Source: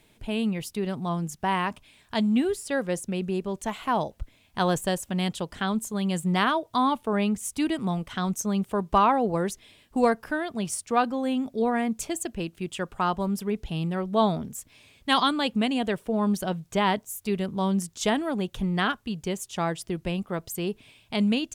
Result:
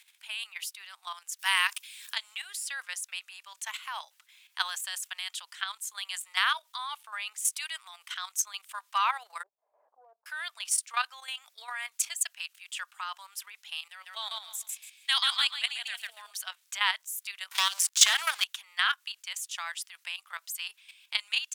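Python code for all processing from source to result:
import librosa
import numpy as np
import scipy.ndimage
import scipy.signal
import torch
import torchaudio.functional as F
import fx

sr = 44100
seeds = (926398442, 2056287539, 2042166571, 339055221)

y = fx.chain(x, sr, fx.tilt_eq(slope=3.5),
    fx.band_squash(depth_pct=40), at=(1.39, 2.15))
y = fx.chain(y, sr, fx.steep_lowpass(hz=620.0, slope=36),
    fx.pre_swell(db_per_s=62.0), at=(9.43, 10.26))
y = fx.chain(y, sr, fx.peak_eq(hz=1100.0, db=-6.5, octaves=0.95),
    fx.echo_feedback(ms=142, feedback_pct=27, wet_db=-5.0), at=(13.88, 16.31))
y = fx.chain(y, sr, fx.leveller(passes=3),
    fx.band_squash(depth_pct=70), at=(17.51, 18.44))
y = scipy.signal.sosfilt(scipy.signal.bessel(6, 1900.0, 'highpass', norm='mag', fs=sr, output='sos'), y)
y = fx.level_steps(y, sr, step_db=11)
y = y * librosa.db_to_amplitude(8.0)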